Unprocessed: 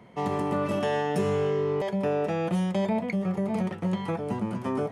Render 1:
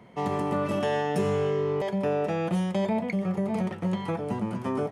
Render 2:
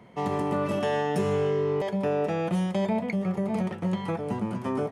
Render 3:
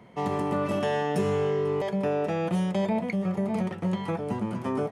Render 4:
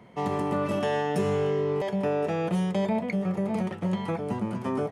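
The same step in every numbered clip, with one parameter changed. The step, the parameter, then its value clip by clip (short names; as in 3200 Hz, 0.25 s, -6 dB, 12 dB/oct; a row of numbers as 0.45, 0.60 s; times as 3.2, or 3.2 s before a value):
echo, time: 90, 150, 494, 1067 ms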